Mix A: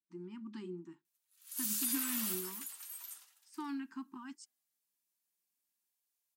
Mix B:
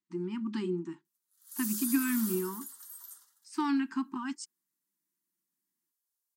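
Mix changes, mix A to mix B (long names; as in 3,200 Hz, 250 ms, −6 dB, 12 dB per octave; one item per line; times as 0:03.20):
speech +11.5 dB
background: add phaser with its sweep stopped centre 670 Hz, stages 6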